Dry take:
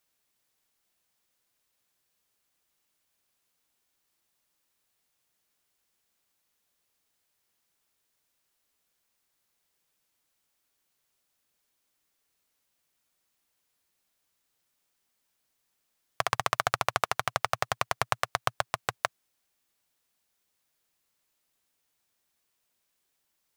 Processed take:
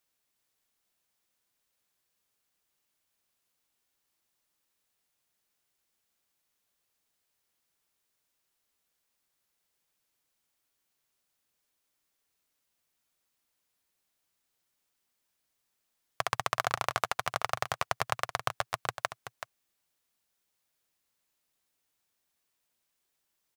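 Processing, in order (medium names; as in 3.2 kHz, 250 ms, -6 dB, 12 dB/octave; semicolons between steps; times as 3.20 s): delay 379 ms -10.5 dB; trim -3 dB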